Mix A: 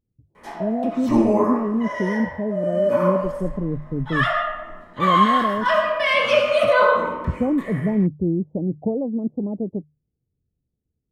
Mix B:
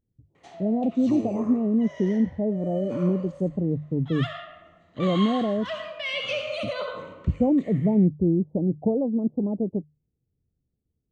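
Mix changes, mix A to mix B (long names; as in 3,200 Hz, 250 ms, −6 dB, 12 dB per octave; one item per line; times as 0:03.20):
background: add loudspeaker in its box 160–6,600 Hz, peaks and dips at 170 Hz +8 dB, 940 Hz −8 dB, 1,600 Hz −9 dB, 2,800 Hz +3 dB, 5,100 Hz −8 dB
reverb: off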